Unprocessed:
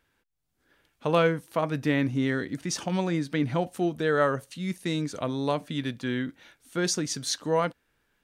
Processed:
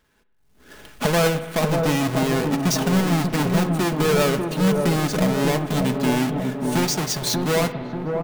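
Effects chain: square wave that keeps the level; recorder AGC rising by 21 dB/s; comb 4.7 ms, depth 38%; on a send: feedback echo behind a low-pass 588 ms, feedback 54%, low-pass 990 Hz, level -4 dB; on the sum: saturation -10.5 dBFS, distortion -20 dB; 6.85–7.34 s: peaking EQ 250 Hz -14 dB 0.35 oct; spring tank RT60 1.7 s, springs 47/55 ms, chirp 45 ms, DRR 11.5 dB

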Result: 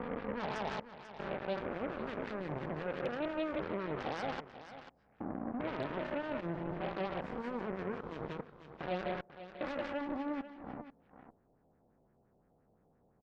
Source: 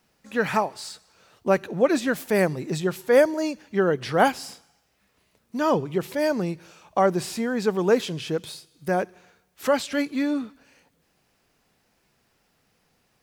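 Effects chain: spectrogram pixelated in time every 400 ms; level-controlled noise filter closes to 510 Hz, open at -26 dBFS; peaking EQ 1.4 kHz -5.5 dB 2.4 oct; compression 6:1, threshold -44 dBFS, peak gain reduction 17.5 dB; peak limiter -42 dBFS, peak gain reduction 9.5 dB; Schroeder reverb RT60 0.4 s, combs from 26 ms, DRR 16 dB; LFO low-pass sine 5.8 Hz 670–1800 Hz; Chebyshev shaper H 7 -14 dB, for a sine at -36.5 dBFS; on a send: delay 491 ms -14 dB; on the sum: tape noise reduction on one side only encoder only; trim +9 dB

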